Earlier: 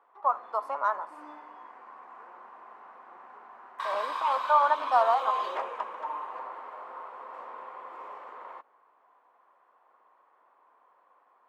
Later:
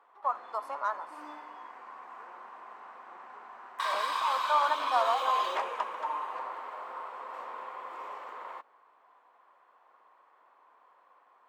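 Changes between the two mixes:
speech −6.0 dB
master: add high-shelf EQ 2,600 Hz +10.5 dB

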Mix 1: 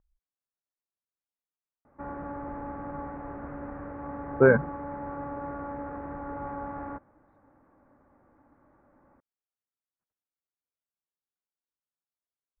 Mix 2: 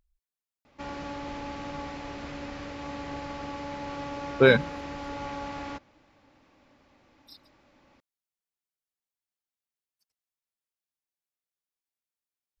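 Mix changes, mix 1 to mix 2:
background: entry −1.20 s
master: remove Butterworth low-pass 1,600 Hz 36 dB per octave

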